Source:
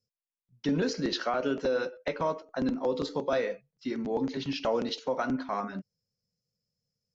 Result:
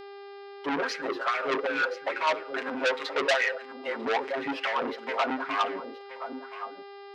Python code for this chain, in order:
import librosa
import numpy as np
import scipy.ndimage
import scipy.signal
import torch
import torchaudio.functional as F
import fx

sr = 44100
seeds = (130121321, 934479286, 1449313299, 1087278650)

p1 = fx.wiener(x, sr, points=9)
p2 = fx.highpass(p1, sr, hz=280.0, slope=6)
p3 = fx.low_shelf(p2, sr, hz=360.0, db=-9.5)
p4 = p3 + 0.81 * np.pad(p3, (int(7.5 * sr / 1000.0), 0))[:len(p3)]
p5 = fx.leveller(p4, sr, passes=3)
p6 = fx.rider(p5, sr, range_db=10, speed_s=2.0)
p7 = p5 + F.gain(torch.from_numpy(p6), 0.5).numpy()
p8 = fx.wah_lfo(p7, sr, hz=2.4, low_hz=360.0, high_hz=2300.0, q=2.6)
p9 = fx.dmg_buzz(p8, sr, base_hz=400.0, harmonics=13, level_db=-44.0, tilt_db=-7, odd_only=False)
p10 = p9 + fx.echo_single(p9, sr, ms=1024, db=-13.0, dry=0)
y = fx.transformer_sat(p10, sr, knee_hz=2800.0)